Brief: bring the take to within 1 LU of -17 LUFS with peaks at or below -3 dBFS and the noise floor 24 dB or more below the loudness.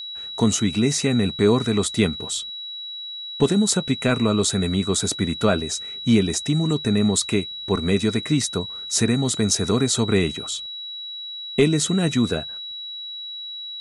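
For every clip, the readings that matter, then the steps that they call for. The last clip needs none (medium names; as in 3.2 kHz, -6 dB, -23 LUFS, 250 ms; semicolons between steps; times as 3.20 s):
steady tone 3.9 kHz; tone level -31 dBFS; loudness -22.0 LUFS; peak level -5.0 dBFS; loudness target -17.0 LUFS
-> band-stop 3.9 kHz, Q 30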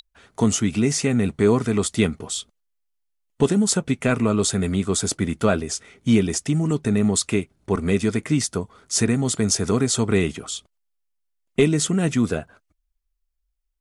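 steady tone not found; loudness -22.0 LUFS; peak level -4.5 dBFS; loudness target -17.0 LUFS
-> trim +5 dB; peak limiter -3 dBFS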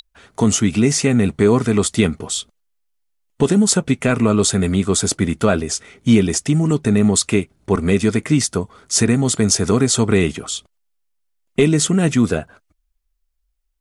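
loudness -17.0 LUFS; peak level -3.0 dBFS; noise floor -69 dBFS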